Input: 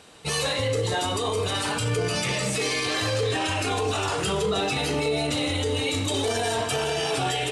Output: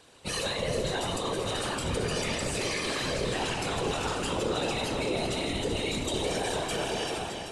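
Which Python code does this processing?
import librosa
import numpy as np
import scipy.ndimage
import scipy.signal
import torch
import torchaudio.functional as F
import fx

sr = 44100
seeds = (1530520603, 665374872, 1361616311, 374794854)

y = fx.fade_out_tail(x, sr, length_s=0.52)
y = fx.whisperise(y, sr, seeds[0])
y = fx.echo_alternate(y, sr, ms=193, hz=1100.0, feedback_pct=75, wet_db=-5.5)
y = F.gain(torch.from_numpy(y), -6.0).numpy()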